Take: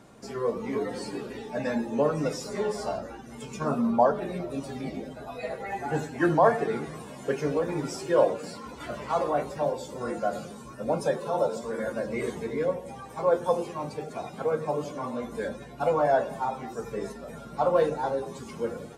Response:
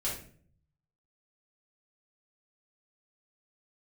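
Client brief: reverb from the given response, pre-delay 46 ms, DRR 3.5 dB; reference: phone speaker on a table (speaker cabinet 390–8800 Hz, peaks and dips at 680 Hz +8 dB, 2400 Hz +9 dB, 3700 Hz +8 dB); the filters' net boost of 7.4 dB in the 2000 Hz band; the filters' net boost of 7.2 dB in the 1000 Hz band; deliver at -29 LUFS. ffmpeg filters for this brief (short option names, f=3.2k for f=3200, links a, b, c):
-filter_complex "[0:a]equalizer=f=1k:t=o:g=3.5,equalizer=f=2k:t=o:g=5,asplit=2[a][b];[1:a]atrim=start_sample=2205,adelay=46[c];[b][c]afir=irnorm=-1:irlink=0,volume=-8dB[d];[a][d]amix=inputs=2:normalize=0,highpass=f=390:w=0.5412,highpass=f=390:w=1.3066,equalizer=f=680:t=q:w=4:g=8,equalizer=f=2.4k:t=q:w=4:g=9,equalizer=f=3.7k:t=q:w=4:g=8,lowpass=f=8.8k:w=0.5412,lowpass=f=8.8k:w=1.3066,volume=-6.5dB"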